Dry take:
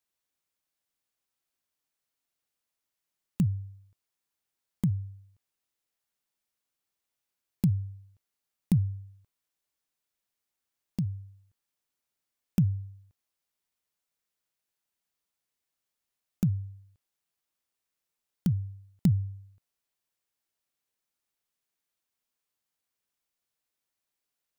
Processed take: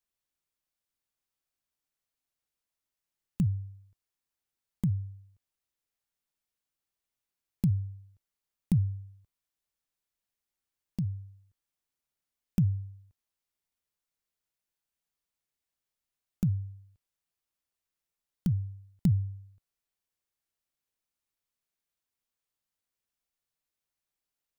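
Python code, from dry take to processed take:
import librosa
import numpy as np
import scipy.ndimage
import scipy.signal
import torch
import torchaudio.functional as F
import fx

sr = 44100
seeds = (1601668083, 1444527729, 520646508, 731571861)

y = fx.low_shelf(x, sr, hz=93.0, db=9.0)
y = y * 10.0 ** (-4.0 / 20.0)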